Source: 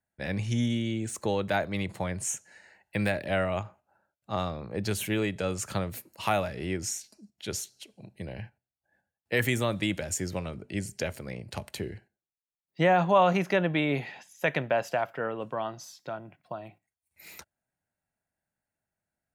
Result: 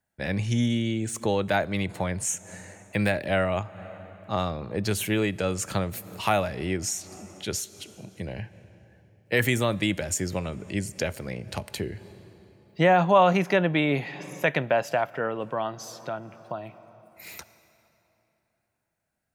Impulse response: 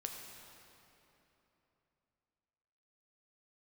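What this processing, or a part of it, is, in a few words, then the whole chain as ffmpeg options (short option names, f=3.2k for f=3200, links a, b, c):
ducked reverb: -filter_complex "[0:a]asplit=3[a][b][c];[1:a]atrim=start_sample=2205[d];[b][d]afir=irnorm=-1:irlink=0[e];[c]apad=whole_len=852908[f];[e][f]sidechaincompress=threshold=-45dB:ratio=8:attack=23:release=172,volume=-6dB[g];[a][g]amix=inputs=2:normalize=0,volume=3dB"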